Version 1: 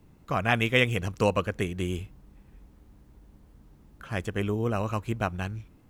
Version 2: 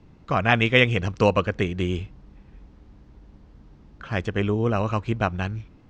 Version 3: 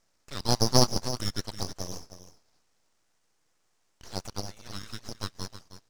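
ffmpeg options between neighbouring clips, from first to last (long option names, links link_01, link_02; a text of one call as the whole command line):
ffmpeg -i in.wav -af "lowpass=frequency=5700:width=0.5412,lowpass=frequency=5700:width=1.3066,volume=5dB" out.wav
ffmpeg -i in.wav -af "highpass=frequency=2800:width_type=q:width=1.8,aeval=exprs='abs(val(0))':channel_layout=same,aecho=1:1:315:0.251,volume=-1dB" out.wav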